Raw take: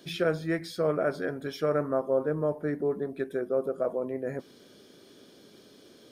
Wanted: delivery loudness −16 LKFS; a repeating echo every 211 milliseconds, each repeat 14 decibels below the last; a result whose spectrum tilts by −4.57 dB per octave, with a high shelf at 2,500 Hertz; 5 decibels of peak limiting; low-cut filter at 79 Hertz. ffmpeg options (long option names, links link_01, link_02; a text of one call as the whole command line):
ffmpeg -i in.wav -af "highpass=79,highshelf=frequency=2500:gain=5.5,alimiter=limit=-19.5dB:level=0:latency=1,aecho=1:1:211|422:0.2|0.0399,volume=15dB" out.wav